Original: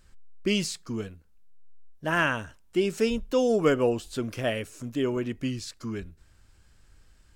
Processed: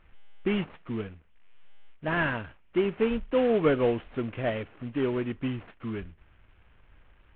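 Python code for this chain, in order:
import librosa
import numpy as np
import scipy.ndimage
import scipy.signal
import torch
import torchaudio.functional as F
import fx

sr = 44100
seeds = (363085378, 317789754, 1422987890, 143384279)

y = fx.cvsd(x, sr, bps=16000)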